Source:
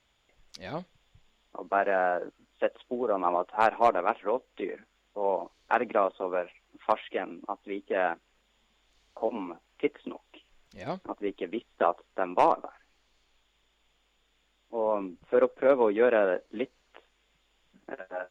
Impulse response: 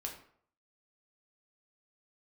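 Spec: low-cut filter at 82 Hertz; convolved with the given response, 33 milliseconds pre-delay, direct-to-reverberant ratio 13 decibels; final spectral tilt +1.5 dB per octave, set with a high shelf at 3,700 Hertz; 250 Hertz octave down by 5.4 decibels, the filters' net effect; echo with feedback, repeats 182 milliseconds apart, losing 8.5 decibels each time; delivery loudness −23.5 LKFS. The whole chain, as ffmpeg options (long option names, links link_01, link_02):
-filter_complex "[0:a]highpass=82,equalizer=frequency=250:width_type=o:gain=-7.5,highshelf=frequency=3700:gain=-4.5,aecho=1:1:182|364|546|728:0.376|0.143|0.0543|0.0206,asplit=2[link_01][link_02];[1:a]atrim=start_sample=2205,adelay=33[link_03];[link_02][link_03]afir=irnorm=-1:irlink=0,volume=-12dB[link_04];[link_01][link_04]amix=inputs=2:normalize=0,volume=6.5dB"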